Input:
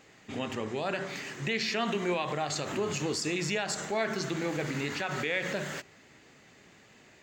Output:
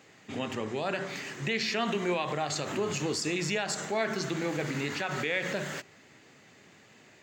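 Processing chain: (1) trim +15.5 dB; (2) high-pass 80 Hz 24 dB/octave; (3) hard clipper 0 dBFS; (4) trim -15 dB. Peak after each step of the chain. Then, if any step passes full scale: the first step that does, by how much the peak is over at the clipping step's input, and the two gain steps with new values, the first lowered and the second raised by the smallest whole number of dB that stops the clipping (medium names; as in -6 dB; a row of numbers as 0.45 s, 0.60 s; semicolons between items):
-2.5 dBFS, -2.0 dBFS, -2.0 dBFS, -17.0 dBFS; nothing clips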